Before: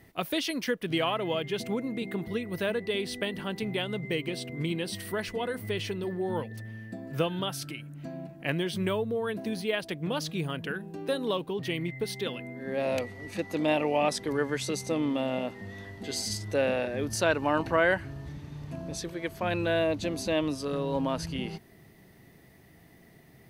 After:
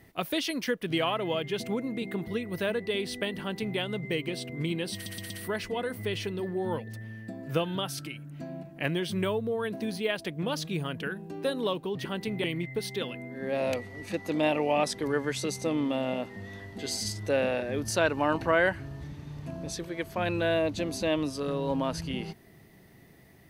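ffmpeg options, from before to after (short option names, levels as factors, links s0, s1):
-filter_complex "[0:a]asplit=6[s0][s1][s2][s3][s4][s5];[s0]atrim=end=5.062[s6];[s1]atrim=start=4.938:end=5.062[s7];[s2]atrim=start=4.938:end=5.062[s8];[s3]atrim=start=4.938:end=11.692[s9];[s4]atrim=start=3.398:end=3.792[s10];[s5]atrim=start=11.688[s11];[s6][s7]acrossfade=d=0.004:c1=hsin:c2=hsin[s12];[s12][s8]acrossfade=d=0.004:c1=hsin:c2=hsin[s13];[s13][s9]acrossfade=d=0.004:c1=hsin:c2=hsin[s14];[s14][s10]acrossfade=d=0.004:c1=hsin:c2=hsin[s15];[s15][s11]acrossfade=d=0.004:c1=hsin:c2=hsin"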